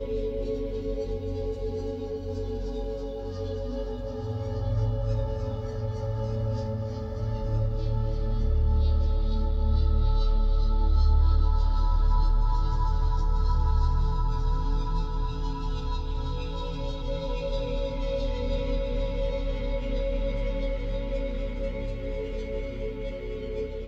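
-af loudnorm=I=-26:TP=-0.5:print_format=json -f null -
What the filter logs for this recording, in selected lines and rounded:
"input_i" : "-30.2",
"input_tp" : "-13.0",
"input_lra" : "7.2",
"input_thresh" : "-40.2",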